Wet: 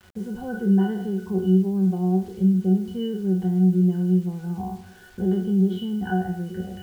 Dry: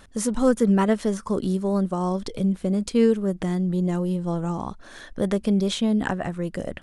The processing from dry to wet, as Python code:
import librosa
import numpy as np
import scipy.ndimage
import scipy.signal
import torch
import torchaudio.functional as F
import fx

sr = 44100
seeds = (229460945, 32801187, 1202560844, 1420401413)

y = fx.spec_trails(x, sr, decay_s=0.61)
y = fx.recorder_agc(y, sr, target_db=-15.5, rise_db_per_s=6.1, max_gain_db=30)
y = fx.octave_resonator(y, sr, note='F#', decay_s=0.21)
y = fx.quant_dither(y, sr, seeds[0], bits=10, dither='none')
y = y * 10.0 ** (7.5 / 20.0)